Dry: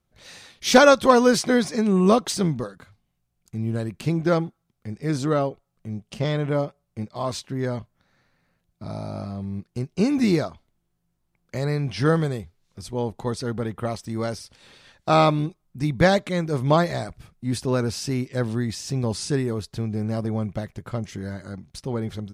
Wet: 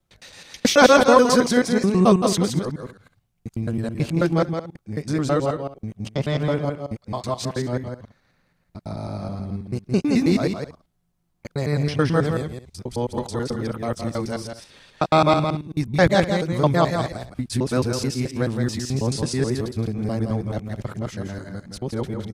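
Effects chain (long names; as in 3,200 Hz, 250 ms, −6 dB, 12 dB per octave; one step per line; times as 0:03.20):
reversed piece by piece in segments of 108 ms
multi-tap delay 168/233 ms −6.5/−18.5 dB
level +1 dB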